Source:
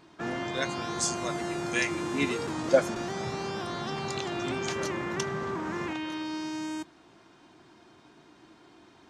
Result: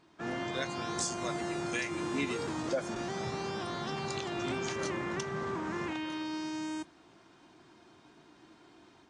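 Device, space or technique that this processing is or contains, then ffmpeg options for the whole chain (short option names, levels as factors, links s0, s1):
low-bitrate web radio: -af "dynaudnorm=f=150:g=3:m=1.78,alimiter=limit=0.188:level=0:latency=1:release=186,volume=0.422" -ar 22050 -c:a aac -b:a 48k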